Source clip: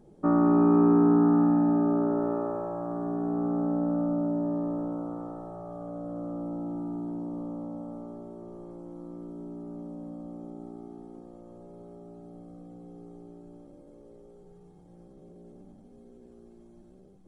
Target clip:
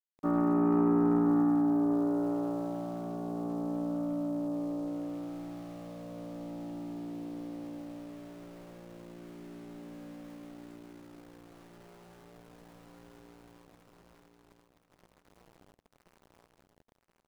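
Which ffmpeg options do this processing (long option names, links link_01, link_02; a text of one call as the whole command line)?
ffmpeg -i in.wav -af "aeval=exprs='val(0)*gte(abs(val(0)),0.00562)':channel_layout=same,aecho=1:1:1026|2052|3078:0.398|0.0876|0.0193,aeval=exprs='0.282*(cos(1*acos(clip(val(0)/0.282,-1,1)))-cos(1*PI/2))+0.0251*(cos(3*acos(clip(val(0)/0.282,-1,1)))-cos(3*PI/2))':channel_layout=same,volume=-4dB" out.wav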